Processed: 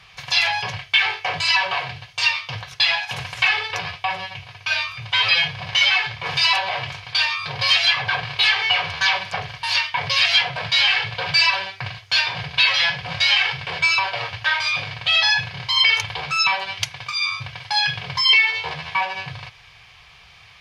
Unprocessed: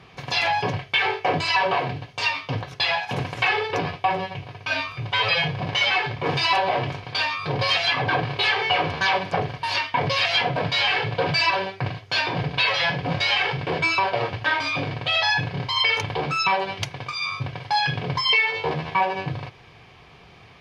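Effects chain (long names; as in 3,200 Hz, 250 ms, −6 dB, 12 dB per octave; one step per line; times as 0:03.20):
guitar amp tone stack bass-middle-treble 10-0-10
level +8 dB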